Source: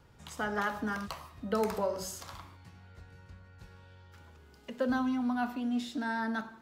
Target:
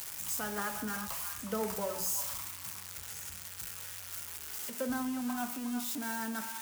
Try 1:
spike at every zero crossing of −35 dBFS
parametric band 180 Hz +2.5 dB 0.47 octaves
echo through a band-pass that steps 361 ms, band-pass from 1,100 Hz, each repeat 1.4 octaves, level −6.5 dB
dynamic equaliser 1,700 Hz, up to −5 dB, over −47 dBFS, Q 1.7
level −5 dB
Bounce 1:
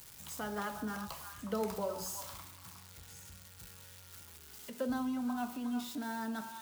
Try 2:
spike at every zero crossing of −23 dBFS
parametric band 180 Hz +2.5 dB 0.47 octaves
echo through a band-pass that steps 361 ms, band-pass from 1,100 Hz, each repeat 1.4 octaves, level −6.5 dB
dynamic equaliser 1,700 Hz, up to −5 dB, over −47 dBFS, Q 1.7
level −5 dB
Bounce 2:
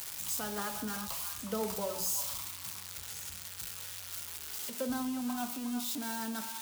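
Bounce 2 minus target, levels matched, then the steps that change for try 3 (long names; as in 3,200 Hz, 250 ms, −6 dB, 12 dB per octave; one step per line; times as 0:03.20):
2,000 Hz band −3.5 dB
change: dynamic equaliser 3,900 Hz, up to −5 dB, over −47 dBFS, Q 1.7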